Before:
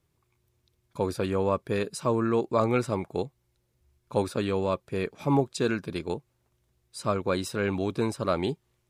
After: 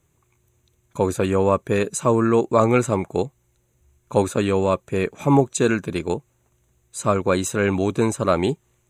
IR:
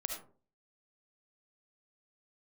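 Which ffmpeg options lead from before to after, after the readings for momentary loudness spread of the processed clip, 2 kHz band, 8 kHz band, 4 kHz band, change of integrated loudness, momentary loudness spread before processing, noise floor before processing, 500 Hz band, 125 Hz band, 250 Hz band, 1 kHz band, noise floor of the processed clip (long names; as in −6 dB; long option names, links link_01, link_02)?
9 LU, +7.5 dB, +12.5 dB, +4.0 dB, +7.5 dB, 9 LU, −73 dBFS, +7.5 dB, +7.5 dB, +7.5 dB, +7.5 dB, −66 dBFS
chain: -af "superequalizer=13b=0.708:14b=0.316:15b=2.24,volume=7.5dB"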